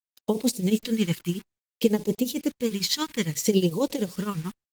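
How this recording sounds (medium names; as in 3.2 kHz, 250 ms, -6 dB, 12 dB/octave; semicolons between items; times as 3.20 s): tremolo triangle 11 Hz, depth 90%; a quantiser's noise floor 8-bit, dither none; phasing stages 2, 0.6 Hz, lowest notch 540–1400 Hz; Opus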